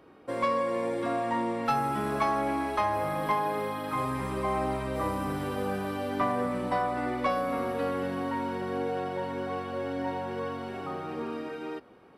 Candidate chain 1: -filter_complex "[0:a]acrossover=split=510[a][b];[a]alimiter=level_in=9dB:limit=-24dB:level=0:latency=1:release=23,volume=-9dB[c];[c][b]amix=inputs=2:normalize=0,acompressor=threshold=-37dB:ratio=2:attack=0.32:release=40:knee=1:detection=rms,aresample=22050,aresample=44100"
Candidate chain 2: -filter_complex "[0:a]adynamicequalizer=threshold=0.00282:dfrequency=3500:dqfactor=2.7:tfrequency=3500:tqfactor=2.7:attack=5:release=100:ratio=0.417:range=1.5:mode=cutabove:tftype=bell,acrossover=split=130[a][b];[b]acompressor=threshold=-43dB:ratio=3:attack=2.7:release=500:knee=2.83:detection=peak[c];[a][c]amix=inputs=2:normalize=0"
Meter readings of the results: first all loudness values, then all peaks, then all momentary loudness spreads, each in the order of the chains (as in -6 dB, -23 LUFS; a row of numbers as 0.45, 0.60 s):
-38.0, -42.5 LUFS; -25.5, -29.0 dBFS; 4, 4 LU